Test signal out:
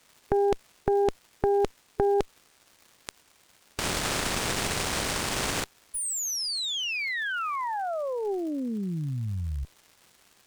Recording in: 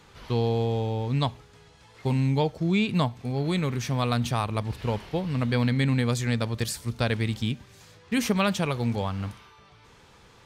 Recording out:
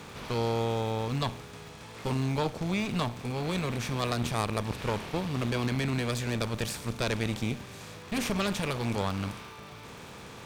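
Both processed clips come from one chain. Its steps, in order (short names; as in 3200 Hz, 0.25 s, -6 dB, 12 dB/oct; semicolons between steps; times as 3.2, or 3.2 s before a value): per-bin compression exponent 0.6; crackle 380/s -38 dBFS; added harmonics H 6 -14 dB, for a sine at -2.5 dBFS; gain -7 dB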